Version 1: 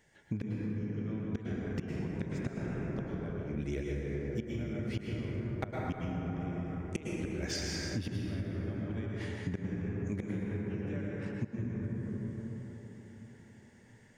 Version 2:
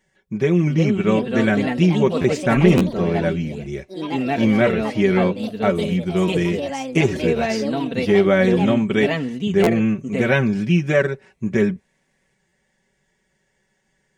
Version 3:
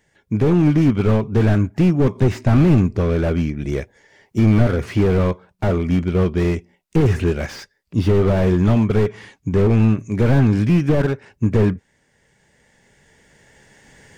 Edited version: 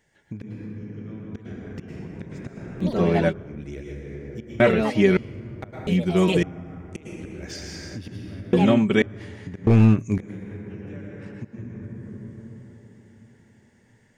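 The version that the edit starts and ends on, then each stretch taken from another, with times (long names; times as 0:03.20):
1
0:02.83–0:03.31: punch in from 2, crossfade 0.06 s
0:04.60–0:05.17: punch in from 2
0:05.87–0:06.43: punch in from 2
0:08.53–0:09.02: punch in from 2
0:09.67–0:10.18: punch in from 3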